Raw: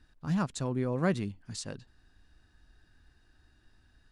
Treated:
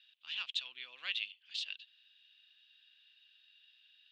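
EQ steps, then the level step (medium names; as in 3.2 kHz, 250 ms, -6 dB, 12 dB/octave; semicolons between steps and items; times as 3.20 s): Butterworth band-pass 3.1 kHz, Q 3.2; +16.5 dB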